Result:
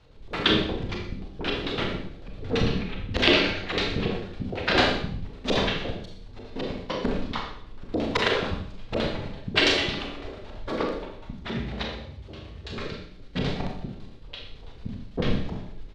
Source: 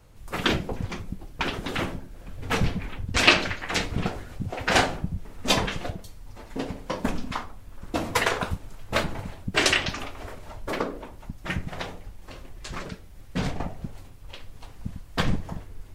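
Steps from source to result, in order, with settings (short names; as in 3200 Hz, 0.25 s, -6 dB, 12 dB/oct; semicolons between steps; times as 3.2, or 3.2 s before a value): 11.37–12.78 frequency shift +47 Hz; LFO low-pass square 9 Hz 440–3900 Hz; on a send: echo 0.123 s -16.5 dB; on the sum: Schroeder reverb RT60 0.56 s, combs from 28 ms, DRR 0.5 dB; gain -2.5 dB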